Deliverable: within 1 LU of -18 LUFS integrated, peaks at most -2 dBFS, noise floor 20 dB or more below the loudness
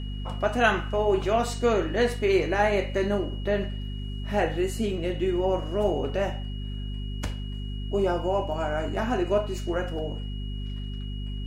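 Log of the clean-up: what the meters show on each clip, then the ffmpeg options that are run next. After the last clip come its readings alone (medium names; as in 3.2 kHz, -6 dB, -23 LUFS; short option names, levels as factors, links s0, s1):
hum 50 Hz; highest harmonic 250 Hz; hum level -30 dBFS; steady tone 2.9 kHz; tone level -45 dBFS; loudness -27.5 LUFS; peak level -8.0 dBFS; loudness target -18.0 LUFS
-> -af "bandreject=f=50:t=h:w=4,bandreject=f=100:t=h:w=4,bandreject=f=150:t=h:w=4,bandreject=f=200:t=h:w=4,bandreject=f=250:t=h:w=4"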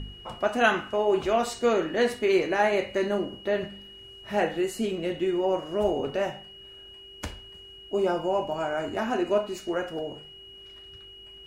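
hum not found; steady tone 2.9 kHz; tone level -45 dBFS
-> -af "bandreject=f=2900:w=30"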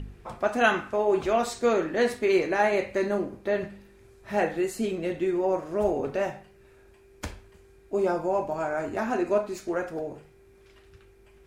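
steady tone not found; loudness -27.0 LUFS; peak level -9.0 dBFS; loudness target -18.0 LUFS
-> -af "volume=2.82,alimiter=limit=0.794:level=0:latency=1"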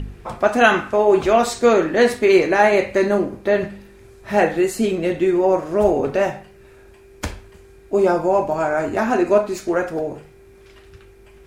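loudness -18.0 LUFS; peak level -2.0 dBFS; noise floor -47 dBFS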